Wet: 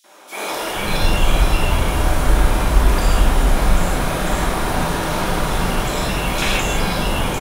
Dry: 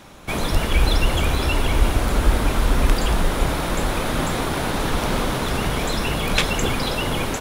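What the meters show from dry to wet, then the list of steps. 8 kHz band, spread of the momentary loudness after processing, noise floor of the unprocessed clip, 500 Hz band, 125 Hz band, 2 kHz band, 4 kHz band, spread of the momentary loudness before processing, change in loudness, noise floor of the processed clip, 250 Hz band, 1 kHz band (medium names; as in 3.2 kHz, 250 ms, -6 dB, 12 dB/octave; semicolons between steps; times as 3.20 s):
+3.0 dB, 3 LU, -26 dBFS, +2.0 dB, +2.5 dB, +2.5 dB, +1.0 dB, 3 LU, +2.5 dB, -28 dBFS, +1.5 dB, +3.5 dB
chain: three bands offset in time highs, mids, lows 40/480 ms, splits 320/3700 Hz; gated-style reverb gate 190 ms flat, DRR -6 dB; trim -3.5 dB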